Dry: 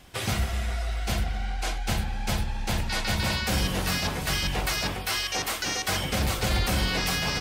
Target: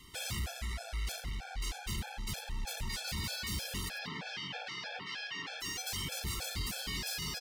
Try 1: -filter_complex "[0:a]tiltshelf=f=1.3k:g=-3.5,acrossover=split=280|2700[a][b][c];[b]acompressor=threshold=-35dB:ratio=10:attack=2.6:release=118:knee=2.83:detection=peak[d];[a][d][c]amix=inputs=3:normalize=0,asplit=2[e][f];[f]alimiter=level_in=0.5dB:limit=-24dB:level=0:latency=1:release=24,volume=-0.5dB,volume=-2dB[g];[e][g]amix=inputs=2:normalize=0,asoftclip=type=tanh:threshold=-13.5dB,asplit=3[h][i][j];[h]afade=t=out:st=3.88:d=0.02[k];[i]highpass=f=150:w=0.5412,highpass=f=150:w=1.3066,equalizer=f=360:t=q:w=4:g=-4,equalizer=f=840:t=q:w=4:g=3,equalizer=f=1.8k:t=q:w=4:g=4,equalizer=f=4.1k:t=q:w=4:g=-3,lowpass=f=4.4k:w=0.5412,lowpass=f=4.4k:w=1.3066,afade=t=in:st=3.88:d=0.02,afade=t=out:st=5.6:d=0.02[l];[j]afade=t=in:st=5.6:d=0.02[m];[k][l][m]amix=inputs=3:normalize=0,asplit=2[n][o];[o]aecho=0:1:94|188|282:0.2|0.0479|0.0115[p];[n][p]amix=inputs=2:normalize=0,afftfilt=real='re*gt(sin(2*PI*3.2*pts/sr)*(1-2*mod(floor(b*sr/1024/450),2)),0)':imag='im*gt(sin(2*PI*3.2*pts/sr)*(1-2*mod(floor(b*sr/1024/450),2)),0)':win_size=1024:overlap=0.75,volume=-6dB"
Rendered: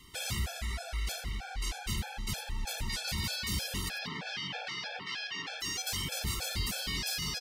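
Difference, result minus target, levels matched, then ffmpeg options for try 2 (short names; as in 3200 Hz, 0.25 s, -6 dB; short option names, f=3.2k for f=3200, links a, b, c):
soft clip: distortion -14 dB
-filter_complex "[0:a]tiltshelf=f=1.3k:g=-3.5,acrossover=split=280|2700[a][b][c];[b]acompressor=threshold=-35dB:ratio=10:attack=2.6:release=118:knee=2.83:detection=peak[d];[a][d][c]amix=inputs=3:normalize=0,asplit=2[e][f];[f]alimiter=level_in=0.5dB:limit=-24dB:level=0:latency=1:release=24,volume=-0.5dB,volume=-2dB[g];[e][g]amix=inputs=2:normalize=0,asoftclip=type=tanh:threshold=-24.5dB,asplit=3[h][i][j];[h]afade=t=out:st=3.88:d=0.02[k];[i]highpass=f=150:w=0.5412,highpass=f=150:w=1.3066,equalizer=f=360:t=q:w=4:g=-4,equalizer=f=840:t=q:w=4:g=3,equalizer=f=1.8k:t=q:w=4:g=4,equalizer=f=4.1k:t=q:w=4:g=-3,lowpass=f=4.4k:w=0.5412,lowpass=f=4.4k:w=1.3066,afade=t=in:st=3.88:d=0.02,afade=t=out:st=5.6:d=0.02[l];[j]afade=t=in:st=5.6:d=0.02[m];[k][l][m]amix=inputs=3:normalize=0,asplit=2[n][o];[o]aecho=0:1:94|188|282:0.2|0.0479|0.0115[p];[n][p]amix=inputs=2:normalize=0,afftfilt=real='re*gt(sin(2*PI*3.2*pts/sr)*(1-2*mod(floor(b*sr/1024/450),2)),0)':imag='im*gt(sin(2*PI*3.2*pts/sr)*(1-2*mod(floor(b*sr/1024/450),2)),0)':win_size=1024:overlap=0.75,volume=-6dB"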